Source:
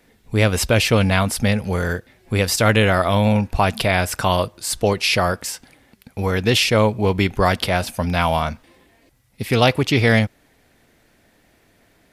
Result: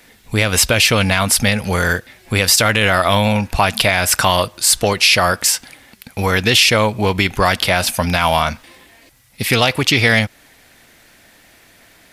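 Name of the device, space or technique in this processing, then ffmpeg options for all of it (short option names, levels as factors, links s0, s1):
mastering chain: -af "equalizer=f=420:t=o:w=0.33:g=-2.5,acompressor=threshold=0.112:ratio=2,asoftclip=type=tanh:threshold=0.473,tiltshelf=f=910:g=-5,alimiter=level_in=2.99:limit=0.891:release=50:level=0:latency=1,volume=0.891"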